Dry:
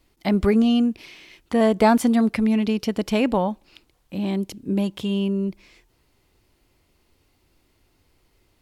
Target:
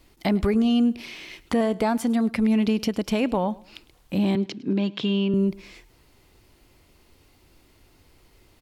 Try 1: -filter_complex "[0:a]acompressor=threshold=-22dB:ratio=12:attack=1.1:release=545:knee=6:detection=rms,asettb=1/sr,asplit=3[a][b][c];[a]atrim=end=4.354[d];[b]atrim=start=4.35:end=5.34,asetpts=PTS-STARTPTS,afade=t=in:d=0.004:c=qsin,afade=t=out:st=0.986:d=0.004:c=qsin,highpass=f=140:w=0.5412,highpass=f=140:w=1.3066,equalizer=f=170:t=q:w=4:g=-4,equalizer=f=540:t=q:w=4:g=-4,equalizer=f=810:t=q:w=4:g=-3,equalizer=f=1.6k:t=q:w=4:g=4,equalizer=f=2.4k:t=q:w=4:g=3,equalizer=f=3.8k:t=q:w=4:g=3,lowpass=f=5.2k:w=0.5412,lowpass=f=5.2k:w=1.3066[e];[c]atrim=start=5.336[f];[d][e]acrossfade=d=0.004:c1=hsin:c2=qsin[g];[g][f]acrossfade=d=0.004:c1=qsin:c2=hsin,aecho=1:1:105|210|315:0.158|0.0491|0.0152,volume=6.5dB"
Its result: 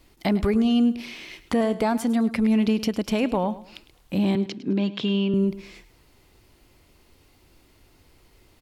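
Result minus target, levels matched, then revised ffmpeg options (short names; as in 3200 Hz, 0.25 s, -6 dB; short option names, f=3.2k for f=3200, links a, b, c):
echo-to-direct +6 dB
-filter_complex "[0:a]acompressor=threshold=-22dB:ratio=12:attack=1.1:release=545:knee=6:detection=rms,asettb=1/sr,asplit=3[a][b][c];[a]atrim=end=4.354[d];[b]atrim=start=4.35:end=5.34,asetpts=PTS-STARTPTS,afade=t=in:d=0.004:c=qsin,afade=t=out:st=0.986:d=0.004:c=qsin,highpass=f=140:w=0.5412,highpass=f=140:w=1.3066,equalizer=f=170:t=q:w=4:g=-4,equalizer=f=540:t=q:w=4:g=-4,equalizer=f=810:t=q:w=4:g=-3,equalizer=f=1.6k:t=q:w=4:g=4,equalizer=f=2.4k:t=q:w=4:g=3,equalizer=f=3.8k:t=q:w=4:g=3,lowpass=f=5.2k:w=0.5412,lowpass=f=5.2k:w=1.3066[e];[c]atrim=start=5.336[f];[d][e]acrossfade=d=0.004:c1=hsin:c2=qsin[g];[g][f]acrossfade=d=0.004:c1=qsin:c2=hsin,aecho=1:1:105|210:0.0794|0.0246,volume=6.5dB"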